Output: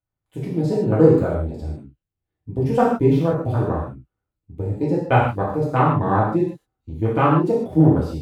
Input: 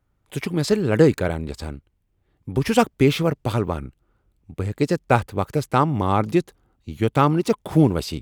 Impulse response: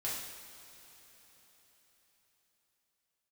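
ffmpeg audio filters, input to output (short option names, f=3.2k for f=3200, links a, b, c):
-filter_complex "[0:a]afwtdn=0.0562[a];[1:a]atrim=start_sample=2205,afade=t=out:st=0.21:d=0.01,atrim=end_sample=9702[b];[a][b]afir=irnorm=-1:irlink=0"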